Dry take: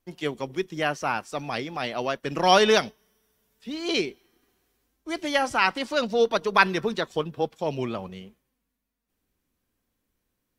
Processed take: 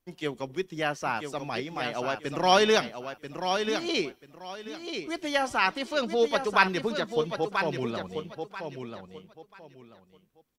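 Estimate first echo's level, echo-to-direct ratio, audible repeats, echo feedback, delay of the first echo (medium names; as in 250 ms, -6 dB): -7.0 dB, -6.5 dB, 3, 24%, 987 ms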